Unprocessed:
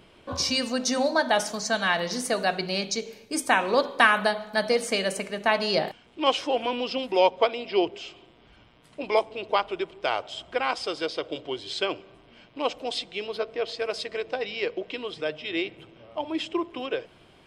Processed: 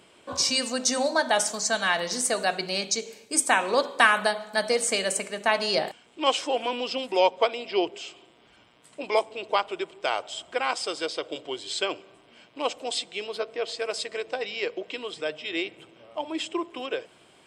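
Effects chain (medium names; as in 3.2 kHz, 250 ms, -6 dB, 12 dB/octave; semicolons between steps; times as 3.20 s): high-pass 280 Hz 6 dB/octave; peaking EQ 7.9 kHz +12.5 dB 0.48 oct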